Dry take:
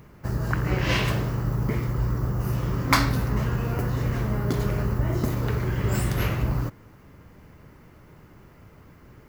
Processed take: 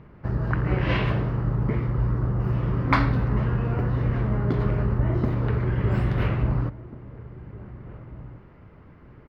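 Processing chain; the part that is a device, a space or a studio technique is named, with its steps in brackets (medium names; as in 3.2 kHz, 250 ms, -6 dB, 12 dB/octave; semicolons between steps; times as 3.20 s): shout across a valley (distance through air 370 m; echo from a far wall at 290 m, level -17 dB); trim +1.5 dB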